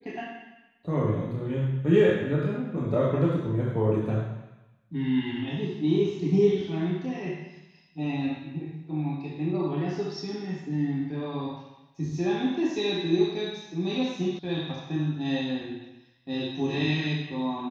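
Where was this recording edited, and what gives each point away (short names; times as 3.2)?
14.39 sound cut off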